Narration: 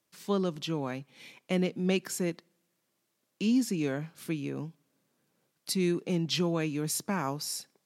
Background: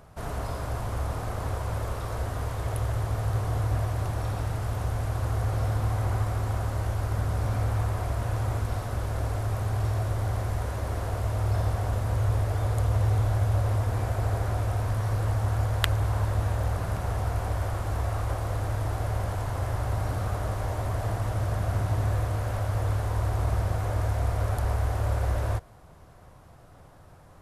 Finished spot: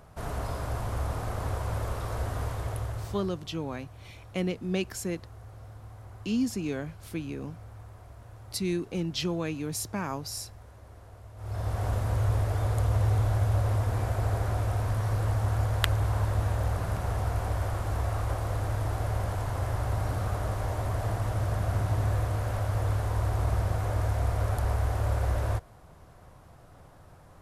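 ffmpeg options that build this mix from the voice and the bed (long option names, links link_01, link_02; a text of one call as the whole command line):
ffmpeg -i stem1.wav -i stem2.wav -filter_complex "[0:a]adelay=2850,volume=-1.5dB[link_01];[1:a]volume=17.5dB,afade=type=out:start_time=2.44:duration=0.94:silence=0.11885,afade=type=in:start_time=11.36:duration=0.5:silence=0.11885[link_02];[link_01][link_02]amix=inputs=2:normalize=0" out.wav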